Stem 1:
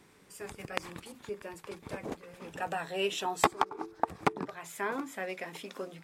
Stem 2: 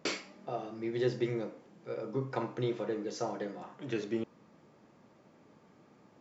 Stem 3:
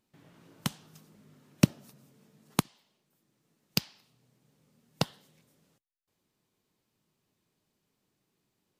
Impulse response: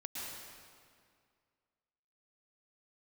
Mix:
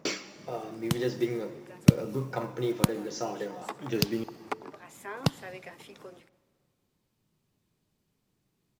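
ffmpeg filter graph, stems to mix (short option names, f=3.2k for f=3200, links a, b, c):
-filter_complex "[0:a]highpass=f=260:w=0.5412,highpass=f=260:w=1.3066,adelay=250,volume=-5.5dB,asplit=2[a][b];[b]volume=-23dB[c];[1:a]equalizer=f=5.7k:w=5.5:g=6.5,aphaser=in_gain=1:out_gain=1:delay=3.9:decay=0.31:speed=0.5:type=triangular,acrusher=bits=7:mode=log:mix=0:aa=0.000001,volume=0.5dB,asplit=3[d][e][f];[e]volume=-14dB[g];[2:a]lowshelf=f=160:g=11,adelay=250,volume=-1dB,asplit=2[h][i];[i]volume=-21dB[j];[f]apad=whole_len=277325[k];[a][k]sidechaincompress=threshold=-56dB:ratio=3:attack=16:release=133[l];[3:a]atrim=start_sample=2205[m];[c][g][j]amix=inputs=3:normalize=0[n];[n][m]afir=irnorm=-1:irlink=0[o];[l][d][h][o]amix=inputs=4:normalize=0"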